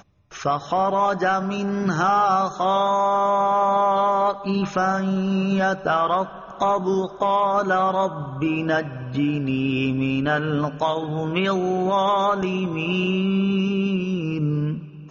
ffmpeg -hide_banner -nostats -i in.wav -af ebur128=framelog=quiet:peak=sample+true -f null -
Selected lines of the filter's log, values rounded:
Integrated loudness:
  I:         -21.7 LUFS
  Threshold: -31.8 LUFS
Loudness range:
  LRA:         3.1 LU
  Threshold: -41.6 LUFS
  LRA low:   -23.1 LUFS
  LRA high:  -20.0 LUFS
Sample peak:
  Peak:       -8.5 dBFS
True peak:
  Peak:       -8.5 dBFS